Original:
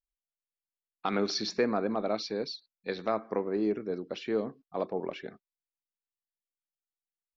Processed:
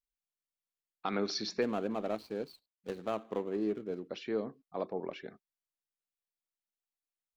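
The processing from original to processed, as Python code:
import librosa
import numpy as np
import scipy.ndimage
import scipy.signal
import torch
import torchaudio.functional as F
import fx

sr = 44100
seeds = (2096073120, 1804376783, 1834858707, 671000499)

y = fx.median_filter(x, sr, points=25, at=(1.61, 4.08), fade=0.02)
y = F.gain(torch.from_numpy(y), -4.0).numpy()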